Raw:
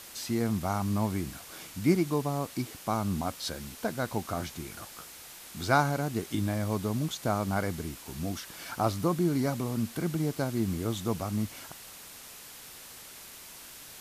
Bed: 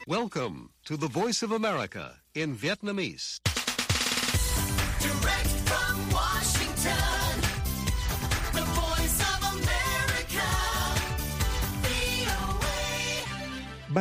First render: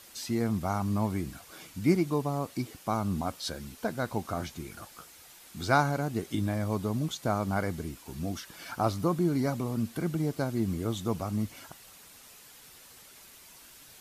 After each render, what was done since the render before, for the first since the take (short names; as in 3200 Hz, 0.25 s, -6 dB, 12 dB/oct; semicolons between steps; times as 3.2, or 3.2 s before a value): denoiser 7 dB, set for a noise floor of -48 dBFS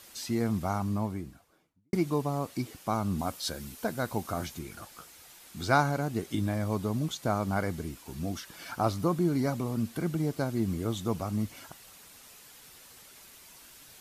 0.59–1.93 studio fade out; 3.19–4.59 high shelf 8200 Hz +7 dB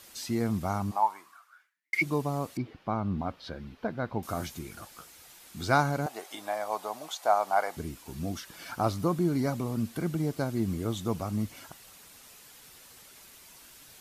0.9–2.01 resonant high-pass 750 Hz -> 2200 Hz, resonance Q 9.5; 2.57–4.23 air absorption 320 m; 6.06–7.77 resonant high-pass 740 Hz, resonance Q 3.2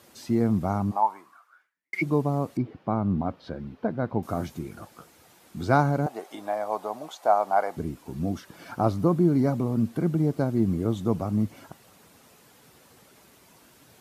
HPF 94 Hz; tilt shelf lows +7 dB, about 1300 Hz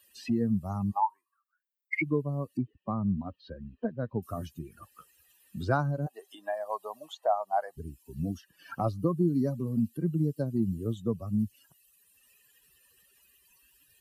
per-bin expansion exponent 2; three-band squash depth 70%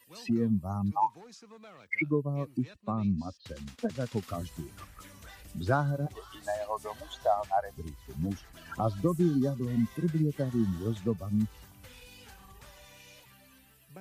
add bed -23.5 dB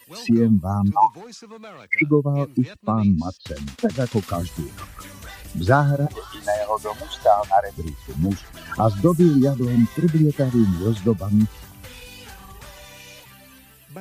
gain +11 dB